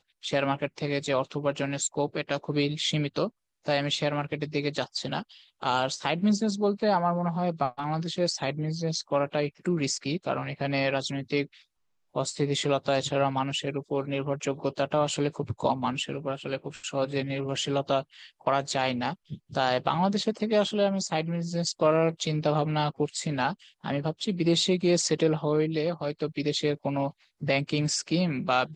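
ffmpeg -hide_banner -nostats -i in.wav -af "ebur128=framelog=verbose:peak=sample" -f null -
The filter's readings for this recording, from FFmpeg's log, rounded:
Integrated loudness:
  I:         -28.2 LUFS
  Threshold: -38.3 LUFS
Loudness range:
  LRA:         3.1 LU
  Threshold: -48.3 LUFS
  LRA low:   -29.8 LUFS
  LRA high:  -26.7 LUFS
Sample peak:
  Peak:       -8.7 dBFS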